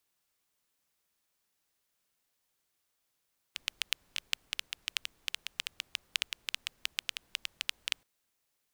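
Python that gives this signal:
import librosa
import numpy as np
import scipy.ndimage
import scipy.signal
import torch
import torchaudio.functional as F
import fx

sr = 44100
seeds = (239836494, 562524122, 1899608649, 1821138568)

y = fx.rain(sr, seeds[0], length_s=4.48, drops_per_s=8.1, hz=2900.0, bed_db=-28.5)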